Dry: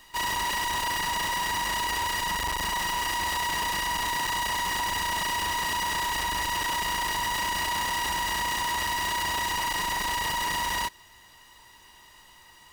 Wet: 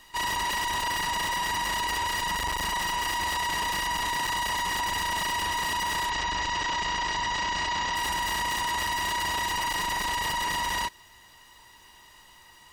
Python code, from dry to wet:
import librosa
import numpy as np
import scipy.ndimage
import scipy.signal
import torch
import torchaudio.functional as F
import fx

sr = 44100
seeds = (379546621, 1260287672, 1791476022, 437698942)

y = fx.lowpass(x, sr, hz=7100.0, slope=24, at=(6.09, 7.94), fade=0.02)
y = fx.spec_gate(y, sr, threshold_db=-30, keep='strong')